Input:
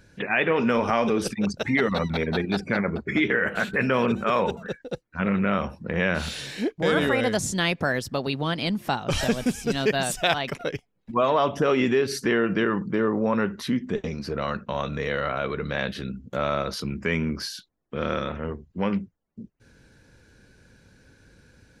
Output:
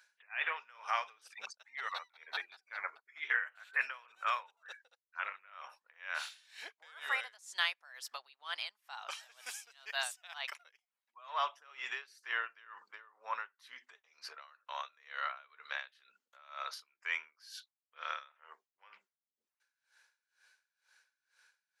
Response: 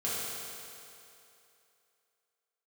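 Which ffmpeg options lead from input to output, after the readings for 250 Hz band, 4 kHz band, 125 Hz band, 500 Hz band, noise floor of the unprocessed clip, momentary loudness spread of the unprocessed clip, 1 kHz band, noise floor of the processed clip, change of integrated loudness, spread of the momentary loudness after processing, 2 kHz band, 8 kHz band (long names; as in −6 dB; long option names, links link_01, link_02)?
below −40 dB, −11.0 dB, below −40 dB, −29.5 dB, −67 dBFS, 9 LU, −12.5 dB, below −85 dBFS, −14.5 dB, 17 LU, −10.5 dB, −14.5 dB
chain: -af "highpass=frequency=940:width=0.5412,highpass=frequency=940:width=1.3066,aeval=exprs='val(0)*pow(10,-25*(0.5-0.5*cos(2*PI*2.1*n/s))/20)':channel_layout=same,volume=-5dB"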